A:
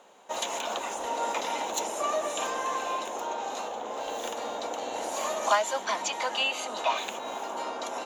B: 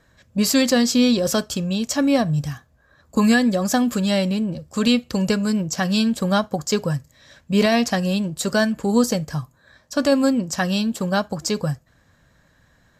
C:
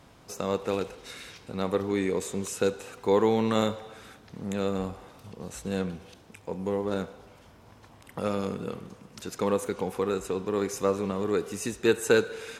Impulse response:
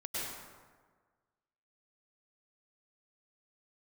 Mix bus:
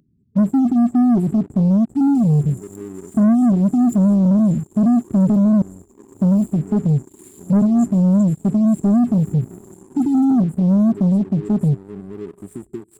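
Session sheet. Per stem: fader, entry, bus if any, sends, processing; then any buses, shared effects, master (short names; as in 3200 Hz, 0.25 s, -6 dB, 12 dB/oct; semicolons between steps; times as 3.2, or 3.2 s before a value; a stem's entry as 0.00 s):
-3.0 dB, 2.15 s, bus A, no send, rotary speaker horn 0.75 Hz; fast leveller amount 100%
-1.5 dB, 0.00 s, muted 5.62–6.21, no bus, no send, sample leveller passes 2; band-pass 190 Hz, Q 1.6
+1.5 dB, 0.90 s, bus A, no send, high shelf 3800 Hz -10 dB
bus A: 0.0 dB, flange 0.41 Hz, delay 5.3 ms, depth 1.7 ms, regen +84%; compressor 6:1, threshold -34 dBFS, peak gain reduction 14.5 dB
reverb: off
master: FFT band-reject 430–7100 Hz; sample leveller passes 2; upward compressor, threshold -51 dBFS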